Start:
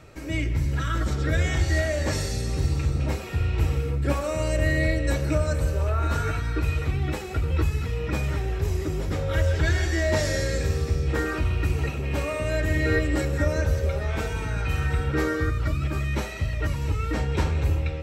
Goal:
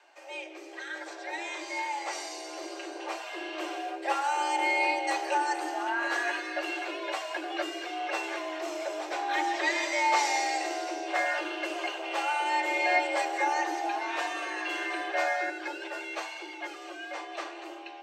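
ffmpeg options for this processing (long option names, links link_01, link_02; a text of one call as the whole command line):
ffmpeg -i in.wav -filter_complex "[0:a]dynaudnorm=framelen=450:gausssize=13:maxgain=10dB,acrossover=split=330 7800:gain=0.126 1 0.158[link_01][link_02][link_03];[link_01][link_02][link_03]amix=inputs=3:normalize=0,afreqshift=260,volume=-7dB" out.wav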